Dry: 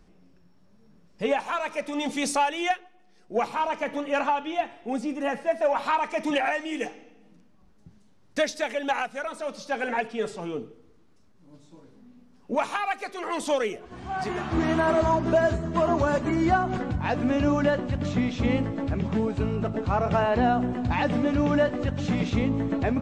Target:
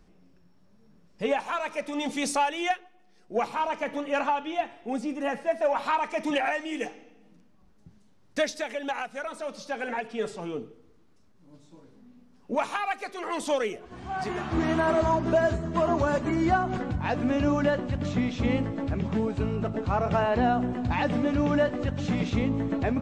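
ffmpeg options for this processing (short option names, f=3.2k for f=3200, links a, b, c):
-filter_complex "[0:a]asettb=1/sr,asplit=3[a][b][c];[a]atrim=end=8.614[d];[b]atrim=start=8.61:end=10.1,asetpts=PTS-STARTPTS,afade=t=in:d=0.004:c=qsin,afade=t=out:st=1.486:d=0.004:c=qsin,acompressor=threshold=-28dB:ratio=2[e];[c]atrim=start=10.096[f];[d][e]acrossfade=d=0.004:c1=hsin:c2=qsin[g];[g][f]acrossfade=d=0.004:c1=qsin:c2=hsin,volume=-1.5dB"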